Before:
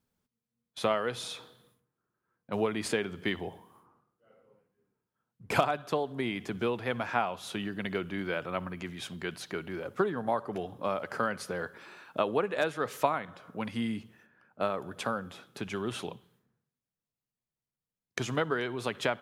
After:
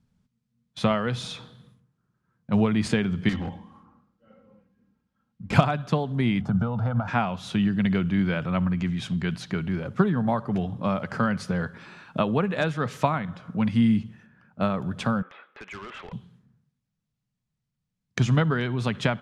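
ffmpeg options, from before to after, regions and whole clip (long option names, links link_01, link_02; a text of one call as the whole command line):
ffmpeg -i in.wav -filter_complex "[0:a]asettb=1/sr,asplit=3[link_01][link_02][link_03];[link_01]atrim=end=3.294[link_04];[link_02]atrim=start=3.29:end=5.53,asetpts=PTS-STARTPTS,afade=type=in:duration=0.004:curve=qsin,afade=type=out:start_time=2.236:duration=0.004:curve=qsin,lowpass=5700,aecho=1:1:3.7:0.71,atrim=end_sample=98784,asoftclip=type=hard:threshold=-35dB[link_05];[link_03]atrim=start=5.526[link_06];[link_04][link_05]acrossfade=duration=0.004:curve1=hsin:curve2=qsin[link_07];[link_07][link_06]acrossfade=duration=0.004:curve1=qsin:curve2=hsin,asettb=1/sr,asplit=3[link_08][link_09][link_10];[link_08]atrim=end=6.414[link_11];[link_09]atrim=start=6.41:end=7.08,asetpts=PTS-STARTPTS,afade=type=in:duration=0.004:curve=qsin,afade=type=out:start_time=0.666:duration=0.004:curve=qsin,highshelf=frequency=1600:width_type=q:width=3:gain=-10,aecho=1:1:1.4:0.71,atrim=end_sample=29547,acompressor=threshold=-31dB:ratio=4:attack=3.2:release=140:knee=1:detection=peak[link_12];[link_10]atrim=start=7.076[link_13];[link_11][link_12]acrossfade=duration=0.004:curve1=hsin:curve2=qsin[link_14];[link_14][link_13]acrossfade=duration=0.004:curve1=qsin:curve2=hsin,asettb=1/sr,asplit=3[link_15][link_16][link_17];[link_15]atrim=end=15.224[link_18];[link_16]atrim=start=15.22:end=16.13,asetpts=PTS-STARTPTS,afade=type=in:duration=0.004:curve=qsin,afade=type=out:start_time=0.906:duration=0.004:curve=qsin,highpass=frequency=470:width=0.5412,highpass=frequency=470:width=1.3066,equalizer=frequency=720:width_type=q:width=4:gain=-4,equalizer=frequency=1200:width_type=q:width=4:gain=3,equalizer=frequency=2000:width_type=q:width=4:gain=6,lowpass=frequency=2600:width=0.5412,lowpass=frequency=2600:width=1.3066,asoftclip=type=hard:threshold=-40dB[link_19];[link_17]atrim=start=16.126[link_20];[link_18][link_19]acrossfade=duration=0.004:curve1=hsin:curve2=qsin[link_21];[link_21][link_20]acrossfade=duration=0.004:curve1=qsin:curve2=hsin,lowpass=7100,lowshelf=frequency=260:width_type=q:width=1.5:gain=10.5,volume=4dB" out.wav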